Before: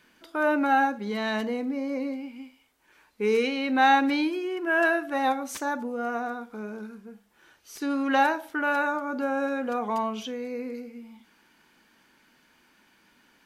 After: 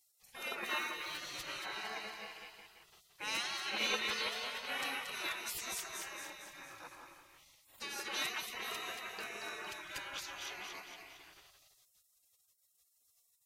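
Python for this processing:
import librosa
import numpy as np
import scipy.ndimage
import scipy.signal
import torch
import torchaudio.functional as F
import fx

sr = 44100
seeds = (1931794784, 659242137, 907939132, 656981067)

y = fx.median_filter(x, sr, points=5, at=(0.63, 1.18))
y = fx.echo_split(y, sr, split_hz=1500.0, low_ms=171, high_ms=229, feedback_pct=52, wet_db=-6.0)
y = fx.spec_gate(y, sr, threshold_db=-25, keep='weak')
y = y * 10.0 ** (3.5 / 20.0)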